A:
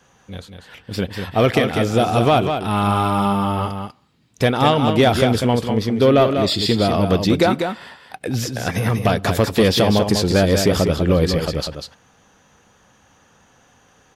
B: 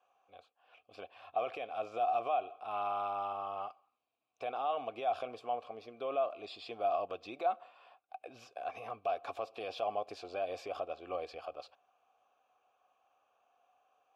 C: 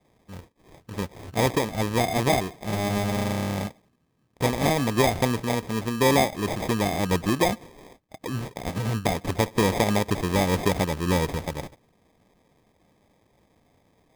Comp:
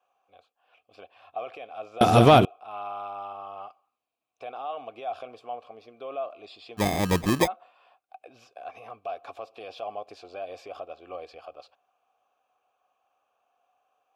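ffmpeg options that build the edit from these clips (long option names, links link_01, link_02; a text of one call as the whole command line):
ffmpeg -i take0.wav -i take1.wav -i take2.wav -filter_complex "[1:a]asplit=3[link_01][link_02][link_03];[link_01]atrim=end=2.012[link_04];[0:a]atrim=start=2.008:end=2.452[link_05];[link_02]atrim=start=2.448:end=6.81[link_06];[2:a]atrim=start=6.77:end=7.48[link_07];[link_03]atrim=start=7.44[link_08];[link_04][link_05]acrossfade=duration=0.004:curve1=hsin:curve2=hsin[link_09];[link_09][link_06]acrossfade=duration=0.004:curve1=hsin:curve2=hsin[link_10];[link_10][link_07]acrossfade=duration=0.04:curve1=tri:curve2=tri[link_11];[link_11][link_08]acrossfade=duration=0.04:curve1=tri:curve2=tri" out.wav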